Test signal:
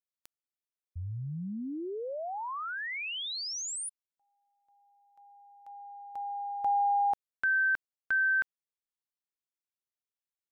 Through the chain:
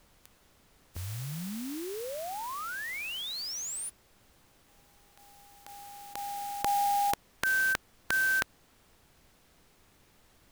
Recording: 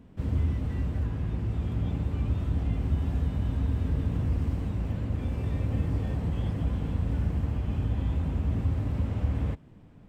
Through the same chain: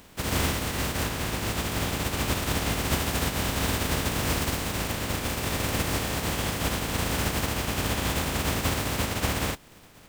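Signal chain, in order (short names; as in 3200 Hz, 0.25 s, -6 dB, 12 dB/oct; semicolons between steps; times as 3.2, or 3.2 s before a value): spectral contrast lowered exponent 0.39; added noise pink -63 dBFS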